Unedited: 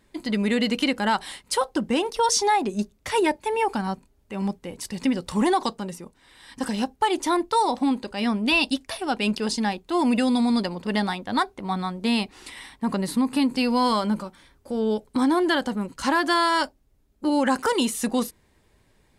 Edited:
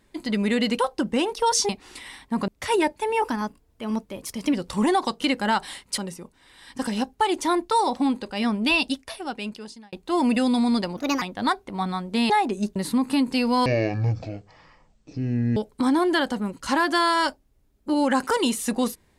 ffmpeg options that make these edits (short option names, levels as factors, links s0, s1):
-filter_complex "[0:a]asplit=15[s0][s1][s2][s3][s4][s5][s6][s7][s8][s9][s10][s11][s12][s13][s14];[s0]atrim=end=0.792[s15];[s1]atrim=start=1.558:end=2.462[s16];[s2]atrim=start=12.198:end=12.992[s17];[s3]atrim=start=2.918:end=3.664[s18];[s4]atrim=start=3.66:end=5.12,asetpts=PTS-STARTPTS,asetrate=48951,aresample=44100,atrim=end_sample=58005,asetpts=PTS-STARTPTS[s19];[s5]atrim=start=5.116:end=5.792[s20];[s6]atrim=start=0.788:end=1.562[s21];[s7]atrim=start=5.788:end=9.74,asetpts=PTS-STARTPTS,afade=t=out:st=2.702:d=1.25[s22];[s8]atrim=start=9.74:end=10.784,asetpts=PTS-STARTPTS,afade=t=in:d=0.004:c=hsin[s23];[s9]atrim=start=10.78:end=11.12,asetpts=PTS-STARTPTS,asetrate=59535,aresample=44100[s24];[s10]atrim=start=11.116:end=12.202[s25];[s11]atrim=start=2.458:end=2.922[s26];[s12]atrim=start=12.988:end=13.894[s27];[s13]atrim=start=13.89:end=14.92,asetpts=PTS-STARTPTS,asetrate=23814,aresample=44100[s28];[s14]atrim=start=14.916[s29];[s15][s16]acrossfade=d=0.004:c1=hsin:c2=hsin[s30];[s30][s17]acrossfade=d=0.004:c1=hsin:c2=hsin[s31];[s31][s18]acrossfade=d=0.004:c1=hsin:c2=hsin[s32];[s32][s19]acrossfade=d=0.004:c1=hsin:c2=hsin[s33];[s33][s20]acrossfade=d=0.004:c1=hsin:c2=hsin[s34];[s34][s21]acrossfade=d=0.004:c1=hsin:c2=hsin[s35];[s22][s23]concat=n=2:v=0:a=1[s36];[s35][s36]acrossfade=d=0.004:c1=hsin:c2=hsin[s37];[s37][s24]acrossfade=d=0.004:c1=hsin:c2=hsin[s38];[s38][s25]acrossfade=d=0.004:c1=hsin:c2=hsin[s39];[s39][s26]acrossfade=d=0.004:c1=hsin:c2=hsin[s40];[s40][s27]acrossfade=d=0.004:c1=hsin:c2=hsin[s41];[s41][s28]acrossfade=d=0.004:c1=hsin:c2=hsin[s42];[s42][s29]acrossfade=d=0.004:c1=hsin:c2=hsin"